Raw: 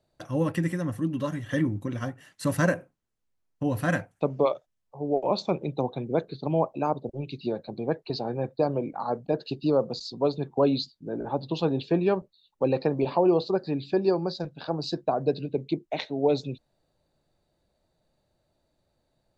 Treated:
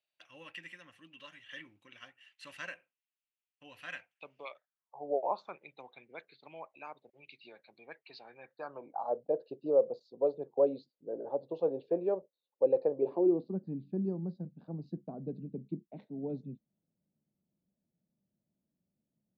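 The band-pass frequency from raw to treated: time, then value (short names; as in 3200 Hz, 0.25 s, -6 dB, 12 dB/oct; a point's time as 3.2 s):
band-pass, Q 4
4.42 s 2700 Hz
5.16 s 540 Hz
5.61 s 2200 Hz
8.42 s 2200 Hz
9.17 s 520 Hz
12.94 s 520 Hz
13.56 s 200 Hz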